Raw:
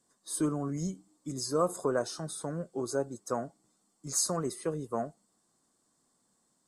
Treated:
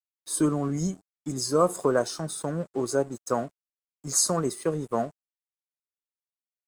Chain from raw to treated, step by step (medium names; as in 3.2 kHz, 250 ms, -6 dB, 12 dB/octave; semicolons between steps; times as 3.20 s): crossover distortion -55.5 dBFS; trim +6.5 dB